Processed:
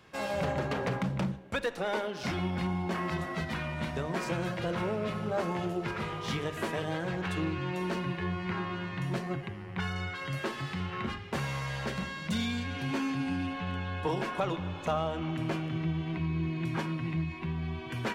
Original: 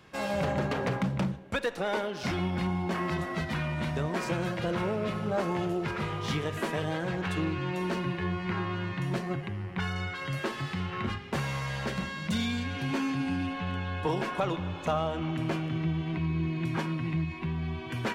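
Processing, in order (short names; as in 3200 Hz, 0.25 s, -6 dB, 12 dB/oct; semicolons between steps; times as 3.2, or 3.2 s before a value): notches 50/100/150/200/250/300/350 Hz; gain -1.5 dB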